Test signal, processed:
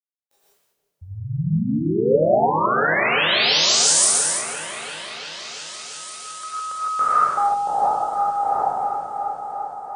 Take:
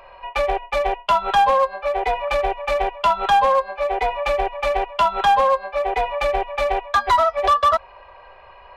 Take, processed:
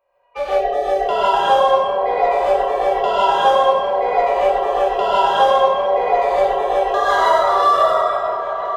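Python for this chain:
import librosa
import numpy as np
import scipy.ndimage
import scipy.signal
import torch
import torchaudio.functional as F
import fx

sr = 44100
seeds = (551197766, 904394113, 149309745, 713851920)

p1 = fx.spec_trails(x, sr, decay_s=1.96)
p2 = fx.highpass(p1, sr, hz=58.0, slope=6)
p3 = fx.peak_eq(p2, sr, hz=520.0, db=10.0, octaves=1.1)
p4 = fx.level_steps(p3, sr, step_db=22)
p5 = p3 + F.gain(torch.from_numpy(p4), -1.0).numpy()
p6 = fx.noise_reduce_blind(p5, sr, reduce_db=23)
p7 = p6 + fx.echo_opening(p6, sr, ms=342, hz=400, octaves=1, feedback_pct=70, wet_db=-6, dry=0)
p8 = fx.rev_gated(p7, sr, seeds[0], gate_ms=180, shape='rising', drr_db=-6.5)
y = F.gain(torch.from_numpy(p8), -13.5).numpy()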